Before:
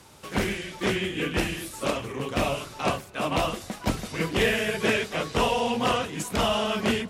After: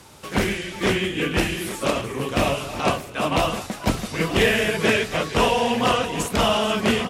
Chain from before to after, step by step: reverse delay 0.646 s, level -12 dB; echo 0.58 s -21 dB; gain +4.5 dB

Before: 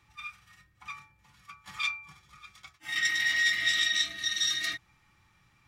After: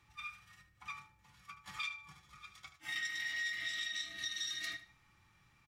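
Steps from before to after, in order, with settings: compressor 6:1, threshold -34 dBFS, peak gain reduction 12 dB; on a send: feedback echo 76 ms, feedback 26%, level -13.5 dB; on the sum: gain -3.5 dB

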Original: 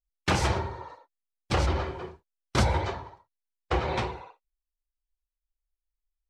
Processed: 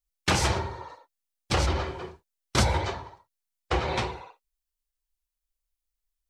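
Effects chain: high shelf 3300 Hz +7.5 dB

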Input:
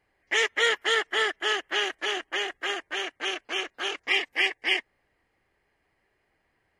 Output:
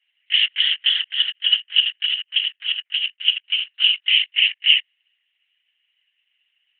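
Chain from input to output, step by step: 1.11–3.7 chopper 12 Hz, depth 65%, duty 30%; LPC vocoder at 8 kHz whisper; limiter -17.5 dBFS, peak gain reduction 8 dB; resonant high-pass 2900 Hz, resonance Q 12

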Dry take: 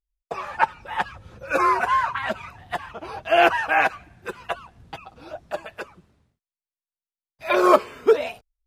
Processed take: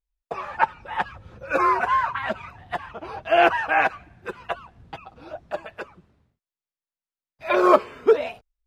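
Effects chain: high shelf 5400 Hz -11.5 dB

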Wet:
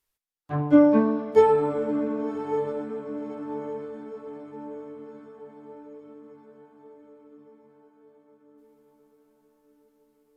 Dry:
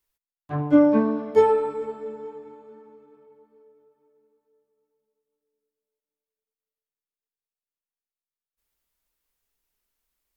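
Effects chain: diffused feedback echo 1.112 s, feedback 52%, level -9.5 dB; AAC 96 kbps 32000 Hz

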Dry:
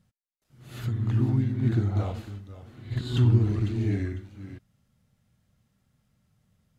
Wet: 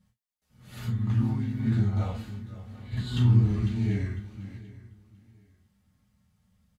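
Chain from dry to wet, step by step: bell 360 Hz -10 dB 0.32 oct; on a send: feedback echo 0.74 s, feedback 26%, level -19.5 dB; on the sum: non-linear reverb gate 80 ms falling, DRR -2.5 dB; gain -5 dB

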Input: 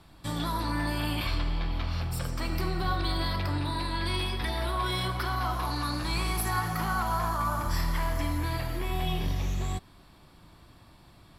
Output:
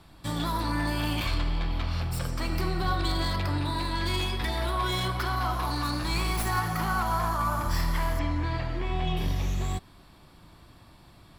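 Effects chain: tracing distortion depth 0.08 ms; 8.19–9.17 air absorption 120 m; gain +1.5 dB

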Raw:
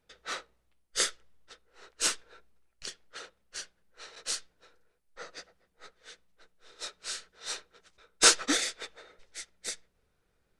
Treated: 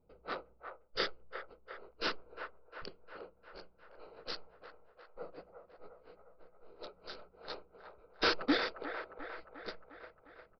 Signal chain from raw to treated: Wiener smoothing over 25 samples; bell 3600 Hz -8 dB 2 oct; soft clip -26 dBFS, distortion -7 dB; on a send: band-limited delay 0.354 s, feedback 61%, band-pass 970 Hz, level -6.5 dB; on the sum: downsampling 11025 Hz; gain +4.5 dB

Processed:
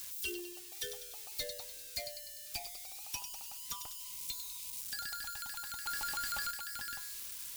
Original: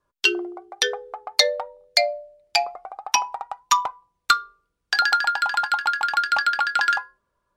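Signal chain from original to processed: switching spikes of -16 dBFS; 4.02–4.79 spectral repair 590–2000 Hz before; on a send: thin delay 99 ms, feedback 50%, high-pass 3200 Hz, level -10.5 dB; on the sum: soft clip -16.5 dBFS, distortion -12 dB; passive tone stack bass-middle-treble 10-0-1; 5.86–6.51 power-law curve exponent 0.5; gain +6 dB

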